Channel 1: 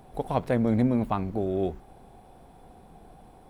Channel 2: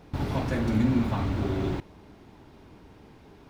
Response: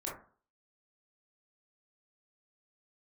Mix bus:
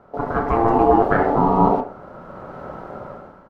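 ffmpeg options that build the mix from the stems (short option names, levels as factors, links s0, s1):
-filter_complex "[0:a]lowpass=1400,volume=1.12,asplit=2[s0][s1];[s1]volume=0.501[s2];[1:a]afwtdn=0.0251,aecho=1:1:6.5:0.96,adelay=0.5,volume=0.891,asplit=2[s3][s4];[s4]volume=0.501[s5];[2:a]atrim=start_sample=2205[s6];[s2][s5]amix=inputs=2:normalize=0[s7];[s7][s6]afir=irnorm=-1:irlink=0[s8];[s0][s3][s8]amix=inputs=3:normalize=0,dynaudnorm=f=220:g=5:m=6.68,aeval=exprs='val(0)*sin(2*PI*570*n/s)':c=same"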